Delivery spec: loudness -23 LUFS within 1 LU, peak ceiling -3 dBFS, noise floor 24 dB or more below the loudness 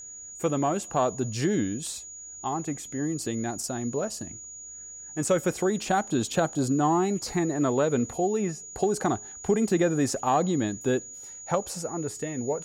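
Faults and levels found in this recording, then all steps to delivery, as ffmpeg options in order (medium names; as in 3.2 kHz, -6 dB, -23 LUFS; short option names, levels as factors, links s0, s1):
steady tone 6.8 kHz; tone level -40 dBFS; loudness -27.5 LUFS; peak level -11.5 dBFS; loudness target -23.0 LUFS
-> -af "bandreject=f=6800:w=30"
-af "volume=1.68"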